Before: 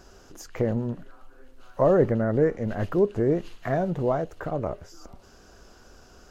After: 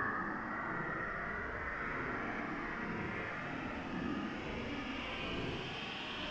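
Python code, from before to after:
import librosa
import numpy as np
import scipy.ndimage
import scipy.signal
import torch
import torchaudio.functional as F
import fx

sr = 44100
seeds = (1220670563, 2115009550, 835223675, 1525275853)

y = fx.cycle_switch(x, sr, every=3, mode='inverted')
y = fx.filter_lfo_lowpass(y, sr, shape='saw_up', hz=0.67, low_hz=310.0, high_hz=4300.0, q=6.0)
y = y * np.sin(2.0 * np.pi * 260.0 * np.arange(len(y)) / sr)
y = fx.paulstretch(y, sr, seeds[0], factor=15.0, window_s=0.05, from_s=5.35)
y = y * 10.0 ** (11.5 / 20.0)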